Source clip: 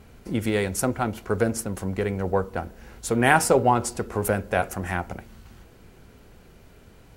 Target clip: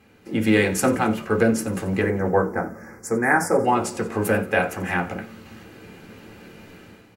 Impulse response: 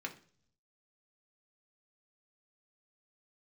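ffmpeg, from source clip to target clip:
-filter_complex "[0:a]dynaudnorm=f=160:g=5:m=3.55,asettb=1/sr,asplit=3[s0][s1][s2];[s0]atrim=end=2.014[s3];[s1]atrim=start=2.01:end=3.65,asetpts=PTS-STARTPTS,afade=t=in:d=0.004:c=qsin,afade=t=out:st=1.636:d=0.004:c=qsin,asuperstop=centerf=3300:order=8:qfactor=1.1[s4];[s2]atrim=start=3.646[s5];[s3][s4]acrossfade=d=0.004:c1=hsin:c2=qsin[s6];[s6][s5]acrossfade=d=0.004:c1=qsin:c2=hsin,asplit=6[s7][s8][s9][s10][s11][s12];[s8]adelay=89,afreqshift=-70,volume=0.133[s13];[s9]adelay=178,afreqshift=-140,volume=0.0759[s14];[s10]adelay=267,afreqshift=-210,volume=0.0432[s15];[s11]adelay=356,afreqshift=-280,volume=0.0248[s16];[s12]adelay=445,afreqshift=-350,volume=0.0141[s17];[s7][s13][s14][s15][s16][s17]amix=inputs=6:normalize=0[s18];[1:a]atrim=start_sample=2205,atrim=end_sample=3528,asetrate=48510,aresample=44100[s19];[s18][s19]afir=irnorm=-1:irlink=0"

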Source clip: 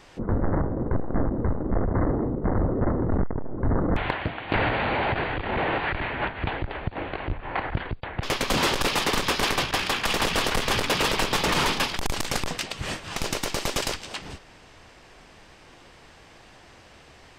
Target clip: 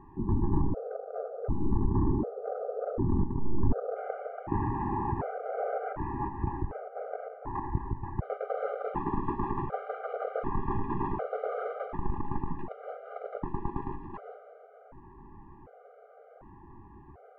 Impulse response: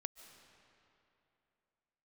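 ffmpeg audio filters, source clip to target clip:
-filter_complex "[0:a]lowpass=f=1100:w=0.5412,lowpass=f=1100:w=1.3066,asplit=2[s0][s1];[s1]acompressor=threshold=0.0126:ratio=6,volume=1.41[s2];[s0][s2]amix=inputs=2:normalize=0[s3];[1:a]atrim=start_sample=2205,asetrate=66150,aresample=44100[s4];[s3][s4]afir=irnorm=-1:irlink=0,afftfilt=real='re*gt(sin(2*PI*0.67*pts/sr)*(1-2*mod(floor(b*sr/1024/400),2)),0)':imag='im*gt(sin(2*PI*0.67*pts/sr)*(1-2*mod(floor(b*sr/1024/400),2)),0)':win_size=1024:overlap=0.75,volume=1.41"

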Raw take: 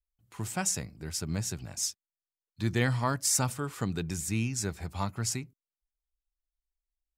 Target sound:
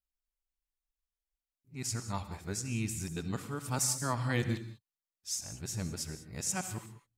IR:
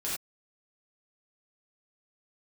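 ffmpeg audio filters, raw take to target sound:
-filter_complex "[0:a]areverse,asplit=2[s0][s1];[1:a]atrim=start_sample=2205,asetrate=34398,aresample=44100,adelay=66[s2];[s1][s2]afir=irnorm=-1:irlink=0,volume=0.15[s3];[s0][s3]amix=inputs=2:normalize=0,volume=0.596"

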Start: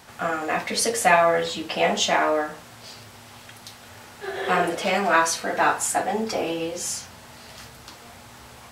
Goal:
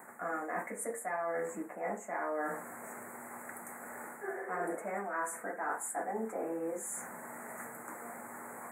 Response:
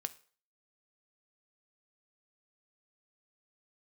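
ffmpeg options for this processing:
-af "highpass=f=200:w=0.5412,highpass=f=200:w=1.3066,areverse,acompressor=threshold=0.0178:ratio=8,areverse,asuperstop=centerf=4000:order=12:qfactor=0.75,volume=1.12"

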